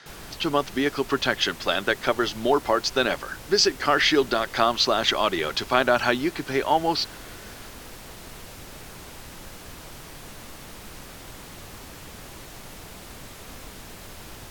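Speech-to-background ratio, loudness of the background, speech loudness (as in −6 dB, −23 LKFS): 18.5 dB, −41.5 LKFS, −23.0 LKFS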